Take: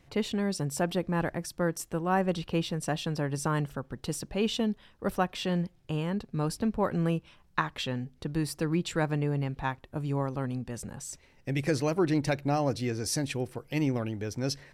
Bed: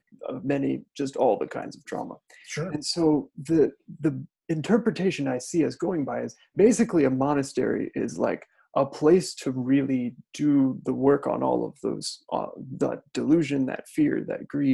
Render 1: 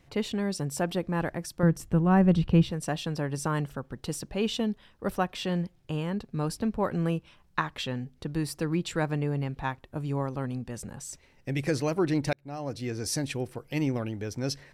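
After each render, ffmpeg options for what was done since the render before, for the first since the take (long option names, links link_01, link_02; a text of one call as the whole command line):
ffmpeg -i in.wav -filter_complex "[0:a]asettb=1/sr,asplit=3[link_01][link_02][link_03];[link_01]atrim=end=1.634[link_04];[link_02]atrim=start=1.63:end=2.71,asetpts=PTS-STARTPTS,afade=type=in:duration=0.004:curve=qsin,afade=type=out:start_time=1.076:duration=0.004:curve=qsin,bass=frequency=250:gain=14,treble=frequency=4000:gain=-6[link_05];[link_03]atrim=start=2.706[link_06];[link_04][link_05]acrossfade=duration=0.004:curve1=hsin:curve2=qsin[link_07];[link_07][link_06]acrossfade=duration=0.004:curve1=qsin:curve2=hsin,asplit=2[link_08][link_09];[link_08]atrim=end=12.33,asetpts=PTS-STARTPTS,afade=type=out:start_time=12.326:duration=0.004:curve=hsin[link_10];[link_09]atrim=start=12.33,asetpts=PTS-STARTPTS,afade=type=in:duration=0.7[link_11];[link_10][link_11]concat=n=2:v=0:a=1" out.wav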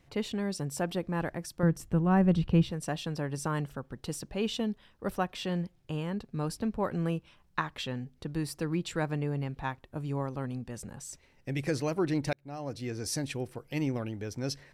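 ffmpeg -i in.wav -af "volume=-3dB" out.wav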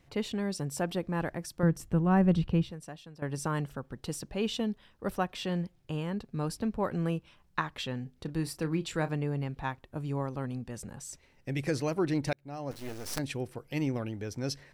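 ffmpeg -i in.wav -filter_complex "[0:a]asettb=1/sr,asplit=3[link_01][link_02][link_03];[link_01]atrim=end=8.024[link_04];[link_02]atrim=start=8.02:end=9.1,asetpts=PTS-STARTPTS,afade=type=in:duration=0.004:curve=qsin,afade=type=out:start_time=1.076:duration=0.004:curve=qsin,asplit=2[link_05][link_06];[link_06]adelay=31,volume=-12.5dB[link_07];[link_05][link_07]amix=inputs=2:normalize=0,atrim=end_sample=47628[link_08];[link_03]atrim=start=9.096[link_09];[link_04][link_08]acrossfade=duration=0.004:curve1=hsin:curve2=qsin[link_10];[link_10][link_09]acrossfade=duration=0.004:curve1=qsin:curve2=hsin,asettb=1/sr,asplit=3[link_11][link_12][link_13];[link_11]atrim=end=12.714[link_14];[link_12]atrim=start=12.71:end=13.19,asetpts=PTS-STARTPTS,afade=type=in:duration=0.004:curve=qsin,afade=type=out:start_time=0.476:duration=0.004:curve=qsin,acrusher=bits=5:dc=4:mix=0:aa=0.000001[link_15];[link_13]atrim=start=13.186[link_16];[link_14][link_15]acrossfade=duration=0.004:curve1=hsin:curve2=qsin[link_17];[link_17][link_16]acrossfade=duration=0.004:curve1=qsin:curve2=hsin,asplit=2[link_18][link_19];[link_18]atrim=end=3.22,asetpts=PTS-STARTPTS,afade=type=out:start_time=2.4:duration=0.82:curve=qua:silence=0.16788[link_20];[link_19]atrim=start=3.22,asetpts=PTS-STARTPTS,afade=type=in:duration=0.004:curve=hsin:silence=0.16788[link_21];[link_20][link_21]concat=n=2:v=0:a=1" out.wav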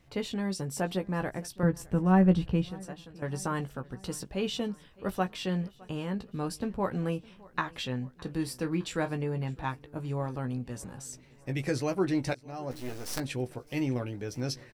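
ffmpeg -i in.wav -filter_complex "[0:a]asplit=2[link_01][link_02];[link_02]adelay=16,volume=-7.5dB[link_03];[link_01][link_03]amix=inputs=2:normalize=0,aecho=1:1:611|1222|1833|2444:0.0668|0.0394|0.0233|0.0137" out.wav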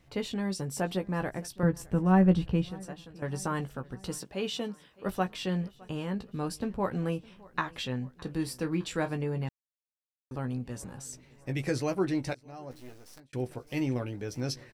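ffmpeg -i in.wav -filter_complex "[0:a]asettb=1/sr,asplit=3[link_01][link_02][link_03];[link_01]atrim=end=4.184[link_04];[link_02]atrim=start=4.18:end=5.06,asetpts=PTS-STARTPTS,afade=type=in:duration=0.004:curve=qsin,afade=type=out:start_time=0.876:duration=0.004:curve=qsin,highpass=frequency=240:poles=1[link_05];[link_03]atrim=start=5.056[link_06];[link_04][link_05]acrossfade=duration=0.004:curve1=hsin:curve2=qsin[link_07];[link_07][link_06]acrossfade=duration=0.004:curve1=qsin:curve2=hsin,asplit=4[link_08][link_09][link_10][link_11];[link_08]atrim=end=9.49,asetpts=PTS-STARTPTS,afade=type=out:start_time=9.486:duration=0.004:curve=hsin[link_12];[link_09]atrim=start=9.49:end=10.31,asetpts=PTS-STARTPTS,volume=0[link_13];[link_10]atrim=start=10.31:end=13.33,asetpts=PTS-STARTPTS,afade=type=in:duration=0.004:curve=hsin,afade=type=out:start_time=1.62:duration=1.4[link_14];[link_11]atrim=start=13.33,asetpts=PTS-STARTPTS,afade=type=in:duration=0.004:curve=hsin[link_15];[link_12][link_13][link_14][link_15]concat=n=4:v=0:a=1" out.wav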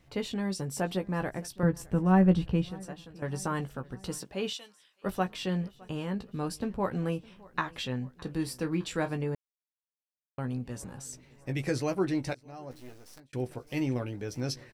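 ffmpeg -i in.wav -filter_complex "[0:a]asettb=1/sr,asplit=3[link_01][link_02][link_03];[link_01]atrim=end=4.534[link_04];[link_02]atrim=start=4.53:end=5.04,asetpts=PTS-STARTPTS,afade=type=in:duration=0.004:curve=qsin,afade=type=out:start_time=0.506:duration=0.004:curve=qsin,bandpass=frequency=6900:width_type=q:width=0.51[link_05];[link_03]atrim=start=5.036[link_06];[link_04][link_05]acrossfade=duration=0.004:curve1=hsin:curve2=qsin[link_07];[link_07][link_06]acrossfade=duration=0.004:curve1=qsin:curve2=hsin,asplit=3[link_08][link_09][link_10];[link_08]atrim=end=9.35,asetpts=PTS-STARTPTS,afade=type=out:start_time=9.346:duration=0.004:curve=hsin[link_11];[link_09]atrim=start=9.35:end=10.38,asetpts=PTS-STARTPTS,volume=0[link_12];[link_10]atrim=start=10.38,asetpts=PTS-STARTPTS,afade=type=in:duration=0.004:curve=hsin[link_13];[link_11][link_12][link_13]concat=n=3:v=0:a=1" out.wav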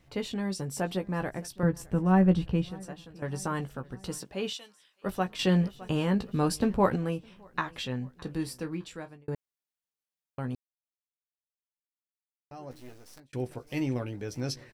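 ffmpeg -i in.wav -filter_complex "[0:a]asettb=1/sr,asplit=3[link_01][link_02][link_03];[link_01]atrim=end=5.394[link_04];[link_02]atrim=start=5.39:end=6.96,asetpts=PTS-STARTPTS,afade=type=in:duration=0.004:curve=qsin,afade=type=out:start_time=1.566:duration=0.004:curve=qsin,acontrast=80[link_05];[link_03]atrim=start=6.956[link_06];[link_04][link_05]acrossfade=duration=0.004:curve1=hsin:curve2=qsin[link_07];[link_07][link_06]acrossfade=duration=0.004:curve1=qsin:curve2=hsin,asplit=4[link_08][link_09][link_10][link_11];[link_08]atrim=end=9.28,asetpts=PTS-STARTPTS,afade=type=out:start_time=8.34:duration=0.94[link_12];[link_09]atrim=start=9.28:end=10.55,asetpts=PTS-STARTPTS,afade=type=in:duration=0.004:curve=hsin,afade=type=out:start_time=1.266:duration=0.004:curve=hsin[link_13];[link_10]atrim=start=10.55:end=12.51,asetpts=PTS-STARTPTS,volume=0[link_14];[link_11]atrim=start=12.51,asetpts=PTS-STARTPTS,afade=type=in:duration=0.004:curve=hsin[link_15];[link_12][link_13][link_14][link_15]concat=n=4:v=0:a=1" out.wav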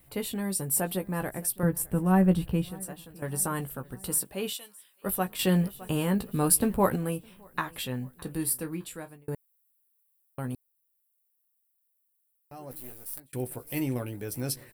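ffmpeg -i in.wav -af "aexciter=amount=5.6:drive=9.5:freq=8700" out.wav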